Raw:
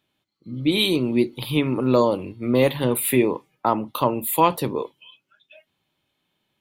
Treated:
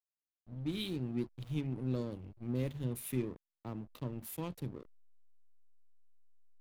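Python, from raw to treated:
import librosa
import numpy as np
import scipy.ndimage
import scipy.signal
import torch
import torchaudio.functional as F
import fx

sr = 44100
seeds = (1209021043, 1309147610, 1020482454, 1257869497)

y = fx.tone_stack(x, sr, knobs='10-0-1')
y = fx.backlash(y, sr, play_db=-45.5)
y = y * 10.0 ** (3.0 / 20.0)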